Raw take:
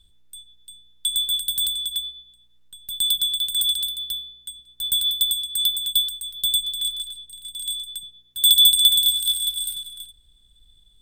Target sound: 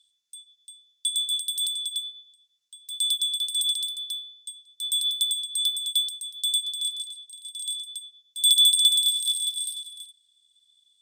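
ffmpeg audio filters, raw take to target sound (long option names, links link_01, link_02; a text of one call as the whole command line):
ffmpeg -i in.wav -af "bandpass=frequency=5900:width_type=q:width=1.8:csg=0,volume=4dB" out.wav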